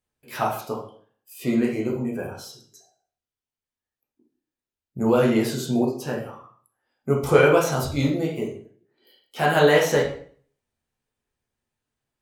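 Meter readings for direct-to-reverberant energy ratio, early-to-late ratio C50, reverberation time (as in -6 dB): -3.5 dB, 5.5 dB, 0.55 s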